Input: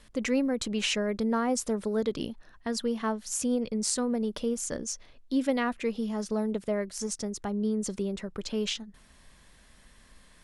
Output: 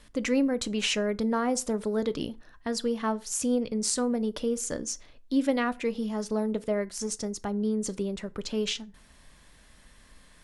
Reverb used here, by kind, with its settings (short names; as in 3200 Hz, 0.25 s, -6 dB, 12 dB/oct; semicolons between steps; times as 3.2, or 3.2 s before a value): FDN reverb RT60 0.35 s, low-frequency decay 0.95×, high-frequency decay 0.7×, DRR 14 dB; gain +1 dB